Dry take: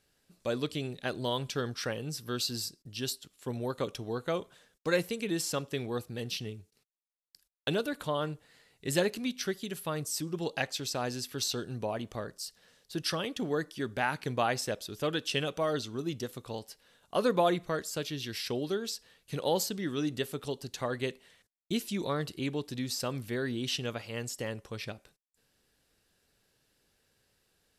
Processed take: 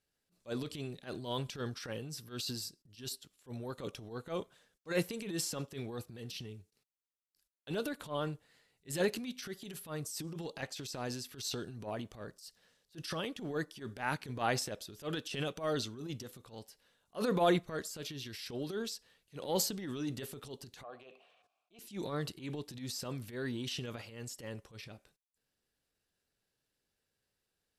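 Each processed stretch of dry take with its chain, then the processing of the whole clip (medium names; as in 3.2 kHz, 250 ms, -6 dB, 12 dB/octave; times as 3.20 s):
20.83–21.79 s: vowel filter a + level flattener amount 50%
whole clip: transient shaper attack -12 dB, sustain +6 dB; upward expansion 1.5:1, over -49 dBFS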